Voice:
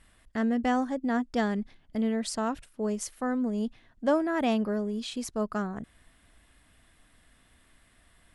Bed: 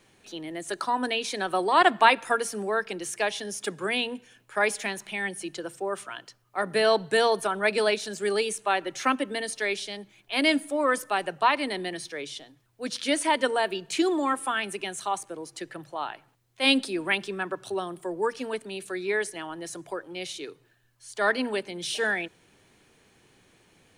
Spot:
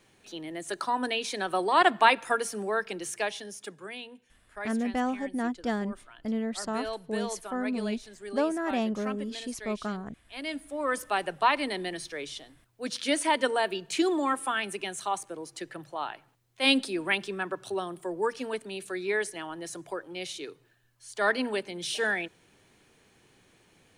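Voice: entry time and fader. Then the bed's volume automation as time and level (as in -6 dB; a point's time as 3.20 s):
4.30 s, -2.5 dB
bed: 3.13 s -2 dB
3.98 s -14 dB
10.42 s -14 dB
11.07 s -1.5 dB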